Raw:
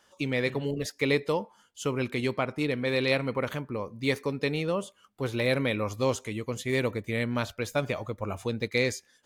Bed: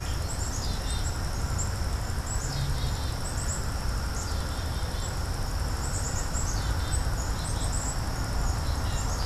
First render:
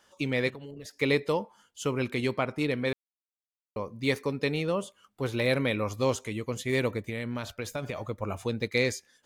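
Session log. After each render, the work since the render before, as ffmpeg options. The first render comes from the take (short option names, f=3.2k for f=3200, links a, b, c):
-filter_complex "[0:a]asplit=3[a][b][c];[a]afade=t=out:st=0.49:d=0.02[d];[b]acompressor=threshold=-39dB:ratio=10:attack=3.2:release=140:knee=1:detection=peak,afade=t=in:st=0.49:d=0.02,afade=t=out:st=1:d=0.02[e];[c]afade=t=in:st=1:d=0.02[f];[d][e][f]amix=inputs=3:normalize=0,asettb=1/sr,asplit=3[g][h][i];[g]atrim=end=7.084[j];[h]atrim=start=7.08:end=8.06,asetpts=PTS-STARTPTS,afade=t=in:d=0.004:c=qsin,afade=t=out:st=0.976:d=0.004:c=qsin,acompressor=threshold=-29dB:ratio=6:attack=3.2:release=140:knee=1:detection=peak[k];[i]atrim=start=8.056[l];[j][k]acrossfade=d=0.004:c1=hsin:c2=qsin[m];[m][l]acrossfade=d=0.004:c1=qsin:c2=hsin,asplit=3[n][o][p];[n]atrim=end=2.93,asetpts=PTS-STARTPTS,afade=t=out:st=2.926:d=0.004:c=hsin[q];[o]atrim=start=2.93:end=3.76,asetpts=PTS-STARTPTS,volume=0[r];[p]atrim=start=3.76,asetpts=PTS-STARTPTS,afade=t=in:d=0.004:c=hsin[s];[q][r][s]concat=n=3:v=0:a=1"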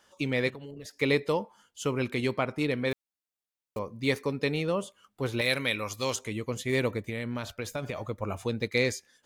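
-filter_complex "[0:a]asettb=1/sr,asplit=3[a][b][c];[a]atrim=end=2.914[d];[b]atrim=start=2.91:end=3.79,asetpts=PTS-STARTPTS,afade=t=in:d=0.004:c=qsin,afade=t=out:st=0.876:d=0.004:c=qsin,acrusher=bits=5:mode=log:mix=0:aa=0.000001[e];[c]atrim=start=3.786[f];[d][e]acrossfade=d=0.004:c1=hsin:c2=qsin[g];[g][f]acrossfade=d=0.004:c1=qsin:c2=hsin,asettb=1/sr,asplit=3[h][i][j];[h]atrim=end=5.414[k];[i]atrim=start=5.41:end=6.16,asetpts=PTS-STARTPTS,afade=t=in:d=0.004:c=qsin,afade=t=out:st=0.746:d=0.004:c=qsin,tiltshelf=f=1.4k:g=-7[l];[j]atrim=start=6.156[m];[k][l]acrossfade=d=0.004:c1=hsin:c2=qsin[n];[n][m]acrossfade=d=0.004:c1=qsin:c2=hsin"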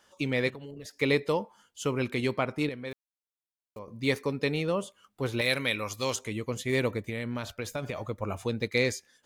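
-filter_complex "[0:a]asplit=3[a][b][c];[a]atrim=end=2.692[d];[b]atrim=start=2.688:end=3.882,asetpts=PTS-STARTPTS,volume=-9dB[e];[c]atrim=start=3.878[f];[d][e]acrossfade=d=0.004:c1=hsin:c2=hsin[g];[g][f]acrossfade=d=0.004:c1=hsin:c2=hsin"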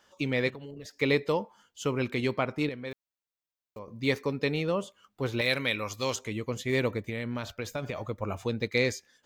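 -af "equalizer=f=10k:w=2.1:g=-10"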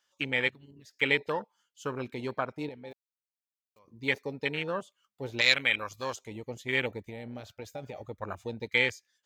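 -af "afwtdn=0.0251,tiltshelf=f=970:g=-8.5"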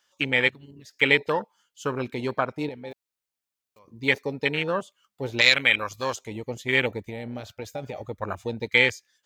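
-af "volume=6.5dB,alimiter=limit=-3dB:level=0:latency=1"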